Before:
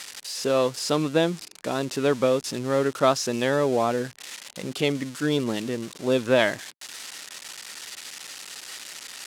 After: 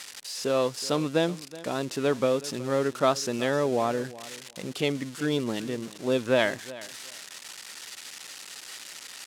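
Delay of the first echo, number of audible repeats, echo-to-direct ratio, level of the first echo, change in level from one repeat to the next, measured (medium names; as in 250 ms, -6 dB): 372 ms, 2, -18.0 dB, -18.0 dB, -15.5 dB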